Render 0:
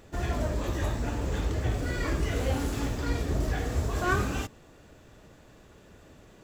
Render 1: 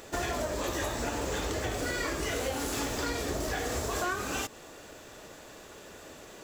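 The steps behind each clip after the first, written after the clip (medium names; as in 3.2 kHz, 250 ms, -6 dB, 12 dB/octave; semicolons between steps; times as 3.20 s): tone controls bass -13 dB, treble +5 dB; compression 12:1, threshold -37 dBFS, peak gain reduction 15 dB; trim +8.5 dB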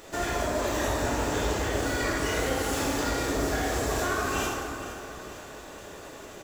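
feedback delay 461 ms, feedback 55%, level -14 dB; plate-style reverb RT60 2.3 s, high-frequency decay 0.5×, DRR -4.5 dB; trim -1.5 dB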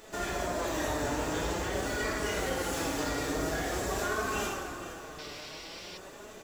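painted sound noise, 5.18–5.98 s, 1.9–5.9 kHz -43 dBFS; flange 0.47 Hz, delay 4.5 ms, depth 2.4 ms, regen +47%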